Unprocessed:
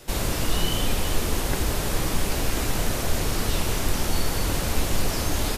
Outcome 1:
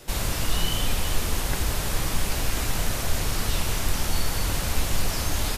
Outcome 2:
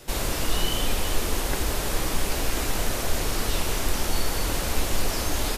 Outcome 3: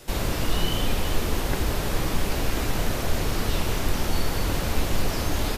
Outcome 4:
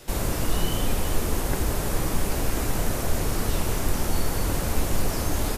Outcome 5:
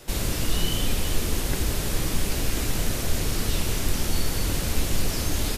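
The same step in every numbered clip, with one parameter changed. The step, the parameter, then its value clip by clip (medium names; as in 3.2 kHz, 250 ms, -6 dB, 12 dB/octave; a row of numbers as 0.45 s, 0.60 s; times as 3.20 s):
dynamic bell, frequency: 350 Hz, 130 Hz, 9.1 kHz, 3.6 kHz, 880 Hz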